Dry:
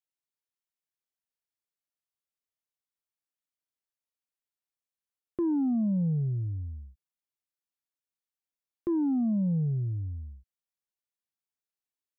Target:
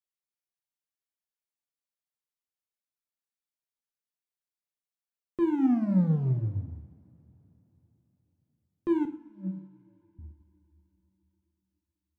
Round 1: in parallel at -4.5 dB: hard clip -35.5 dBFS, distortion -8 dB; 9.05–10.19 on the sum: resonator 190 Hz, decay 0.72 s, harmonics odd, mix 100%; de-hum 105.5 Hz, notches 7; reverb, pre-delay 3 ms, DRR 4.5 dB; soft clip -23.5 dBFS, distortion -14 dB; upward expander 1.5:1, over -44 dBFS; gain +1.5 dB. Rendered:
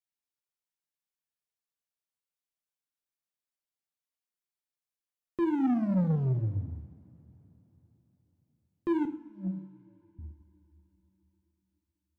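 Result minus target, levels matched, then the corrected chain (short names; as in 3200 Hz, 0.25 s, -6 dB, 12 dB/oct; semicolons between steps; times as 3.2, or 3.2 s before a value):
soft clip: distortion +12 dB
in parallel at -4.5 dB: hard clip -35.5 dBFS, distortion -8 dB; 9.05–10.19 on the sum: resonator 190 Hz, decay 0.72 s, harmonics odd, mix 100%; de-hum 105.5 Hz, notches 7; reverb, pre-delay 3 ms, DRR 4.5 dB; soft clip -15 dBFS, distortion -26 dB; upward expander 1.5:1, over -44 dBFS; gain +1.5 dB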